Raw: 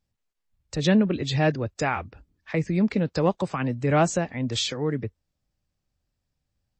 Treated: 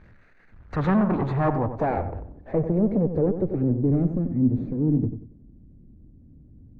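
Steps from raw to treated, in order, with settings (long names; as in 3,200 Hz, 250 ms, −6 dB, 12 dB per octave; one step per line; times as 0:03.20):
lower of the sound and its delayed copy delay 0.48 ms
power curve on the samples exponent 0.5
low-pass filter sweep 1,600 Hz → 270 Hz, 0:00.40–0:04.21
feedback echo with a low-pass in the loop 93 ms, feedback 32%, low-pass 1,800 Hz, level −9 dB
level −5 dB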